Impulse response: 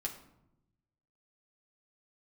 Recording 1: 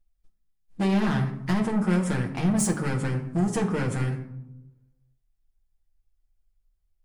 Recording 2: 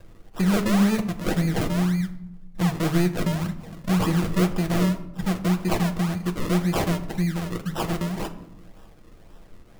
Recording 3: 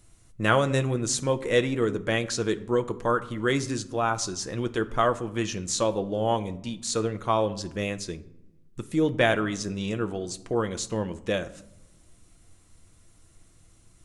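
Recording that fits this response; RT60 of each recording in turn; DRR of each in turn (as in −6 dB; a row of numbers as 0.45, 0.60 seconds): 1; 0.85, 0.85, 0.90 seconds; −1.0, 3.5, 8.5 decibels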